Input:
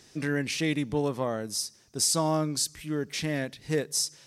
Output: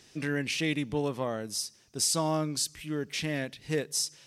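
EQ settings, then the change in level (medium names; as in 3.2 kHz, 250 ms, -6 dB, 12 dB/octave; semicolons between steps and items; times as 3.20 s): peaking EQ 2.8 kHz +5 dB 0.71 oct; -2.5 dB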